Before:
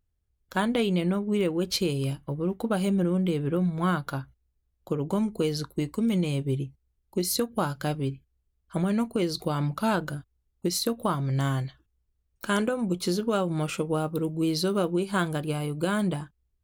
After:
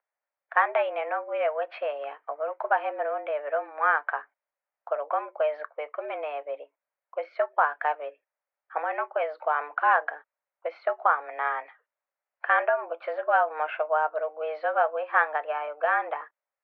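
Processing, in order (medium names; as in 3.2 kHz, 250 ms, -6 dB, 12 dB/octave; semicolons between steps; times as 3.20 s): mistuned SSB +150 Hz 490–2100 Hz; trim +7 dB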